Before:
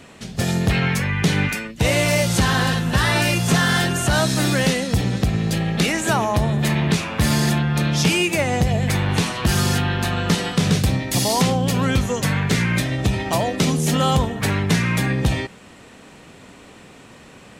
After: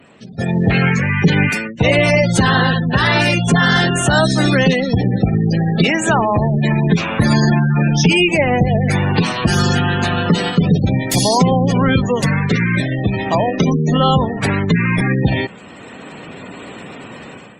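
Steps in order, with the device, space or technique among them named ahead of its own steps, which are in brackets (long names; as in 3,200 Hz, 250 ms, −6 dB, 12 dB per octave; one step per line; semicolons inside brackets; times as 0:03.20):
noise-suppressed video call (high-pass filter 110 Hz 12 dB per octave; gate on every frequency bin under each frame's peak −20 dB strong; automatic gain control gain up to 13 dB; level −1 dB; Opus 24 kbit/s 48,000 Hz)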